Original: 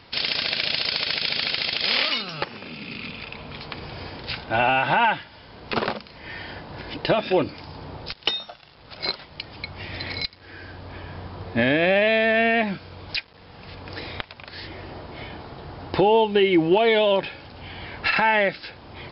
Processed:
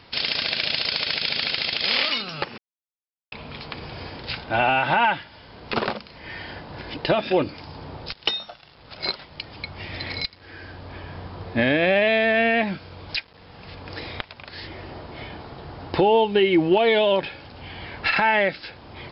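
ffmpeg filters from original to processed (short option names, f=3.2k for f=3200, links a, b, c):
-filter_complex "[0:a]asplit=3[a][b][c];[a]atrim=end=2.58,asetpts=PTS-STARTPTS,afade=t=out:st=2.576:d=0.004:c=hsin[d];[b]atrim=start=2.58:end=3.32,asetpts=PTS-STARTPTS,volume=0[e];[c]atrim=start=3.32,asetpts=PTS-STARTPTS,afade=t=in:d=0.004:c=hsin[f];[d][e][f]concat=n=3:v=0:a=1"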